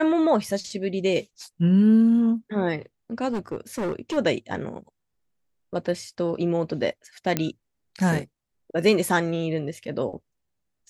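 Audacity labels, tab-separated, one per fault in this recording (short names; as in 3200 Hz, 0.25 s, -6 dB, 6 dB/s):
3.320000	4.180000	clipped -24 dBFS
7.370000	7.370000	pop -8 dBFS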